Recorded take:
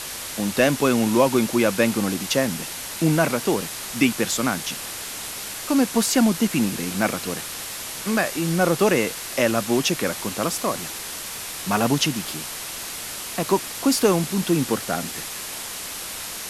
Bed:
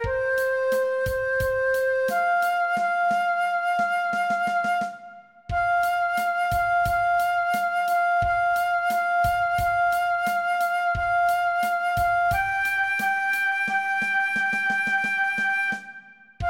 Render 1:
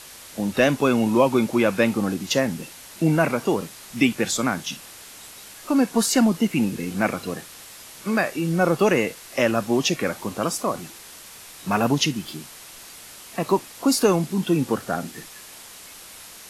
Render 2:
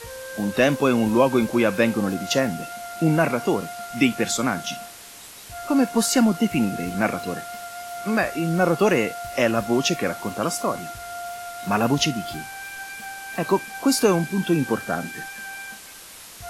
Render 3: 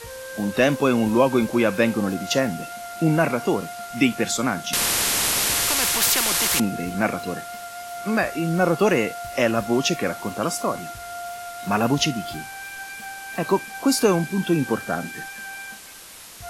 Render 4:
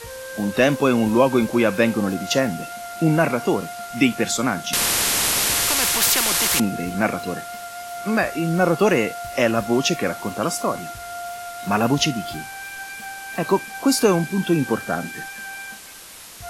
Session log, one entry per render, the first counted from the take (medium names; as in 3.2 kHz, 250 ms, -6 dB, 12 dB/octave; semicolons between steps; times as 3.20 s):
noise print and reduce 10 dB
add bed -12.5 dB
4.73–6.60 s: spectrum-flattening compressor 10:1
trim +1.5 dB